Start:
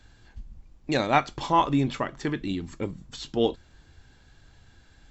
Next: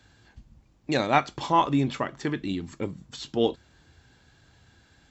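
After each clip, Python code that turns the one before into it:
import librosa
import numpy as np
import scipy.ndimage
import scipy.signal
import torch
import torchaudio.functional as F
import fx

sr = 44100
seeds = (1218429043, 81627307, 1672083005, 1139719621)

y = scipy.signal.sosfilt(scipy.signal.butter(2, 77.0, 'highpass', fs=sr, output='sos'), x)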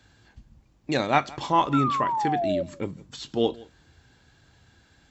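y = fx.spec_paint(x, sr, seeds[0], shape='fall', start_s=1.73, length_s=0.9, low_hz=550.0, high_hz=1400.0, level_db=-26.0)
y = y + 10.0 ** (-22.5 / 20.0) * np.pad(y, (int(168 * sr / 1000.0), 0))[:len(y)]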